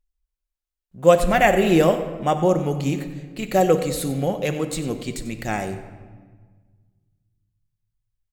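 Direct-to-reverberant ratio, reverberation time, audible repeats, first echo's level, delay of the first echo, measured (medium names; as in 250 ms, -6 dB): 6.5 dB, 1.5 s, 1, -15.0 dB, 94 ms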